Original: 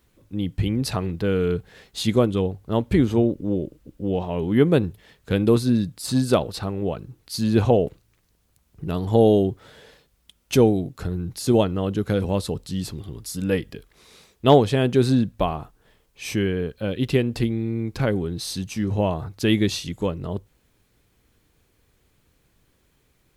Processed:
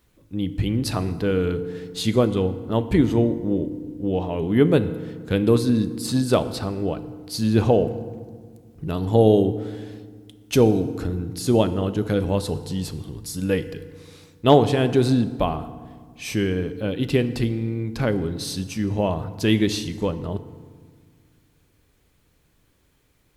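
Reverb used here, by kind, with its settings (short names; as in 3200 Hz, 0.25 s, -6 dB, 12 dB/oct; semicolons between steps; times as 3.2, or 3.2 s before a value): FDN reverb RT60 1.7 s, low-frequency decay 1.45×, high-frequency decay 0.6×, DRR 11 dB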